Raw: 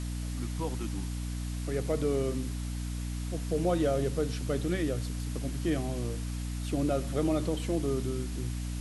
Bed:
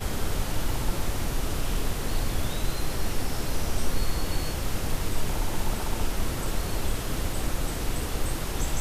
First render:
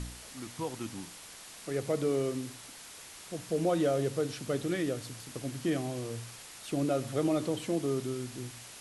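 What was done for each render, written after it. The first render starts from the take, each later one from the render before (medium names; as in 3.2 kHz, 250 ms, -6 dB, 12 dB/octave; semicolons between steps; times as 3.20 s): de-hum 60 Hz, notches 5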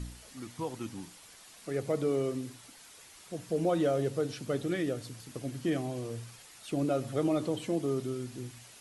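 noise reduction 7 dB, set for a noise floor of -49 dBFS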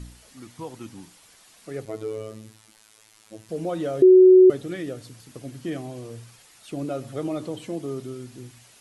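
1.85–3.49 s: robot voice 109 Hz; 4.02–4.50 s: bleep 371 Hz -8 dBFS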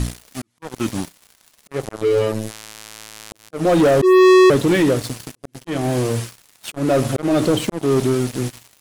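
slow attack 284 ms; waveshaping leveller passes 5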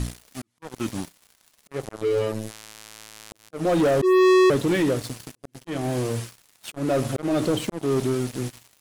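trim -6 dB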